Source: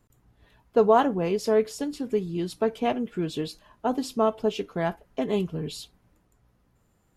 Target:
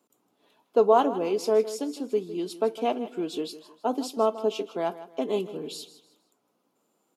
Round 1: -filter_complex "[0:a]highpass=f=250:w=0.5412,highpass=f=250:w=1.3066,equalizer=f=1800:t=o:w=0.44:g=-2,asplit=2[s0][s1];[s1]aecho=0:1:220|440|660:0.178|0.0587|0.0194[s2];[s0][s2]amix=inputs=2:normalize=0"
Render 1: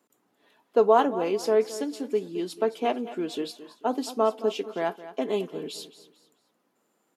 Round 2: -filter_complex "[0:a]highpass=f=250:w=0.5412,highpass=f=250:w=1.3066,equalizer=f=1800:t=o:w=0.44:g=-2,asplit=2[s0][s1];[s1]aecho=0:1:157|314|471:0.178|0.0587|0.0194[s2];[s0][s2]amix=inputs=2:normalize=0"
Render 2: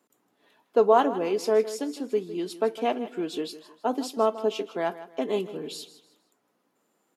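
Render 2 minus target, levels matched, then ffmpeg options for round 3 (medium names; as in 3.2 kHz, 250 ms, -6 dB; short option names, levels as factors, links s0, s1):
2 kHz band +4.5 dB
-filter_complex "[0:a]highpass=f=250:w=0.5412,highpass=f=250:w=1.3066,equalizer=f=1800:t=o:w=0.44:g=-12,asplit=2[s0][s1];[s1]aecho=0:1:157|314|471:0.178|0.0587|0.0194[s2];[s0][s2]amix=inputs=2:normalize=0"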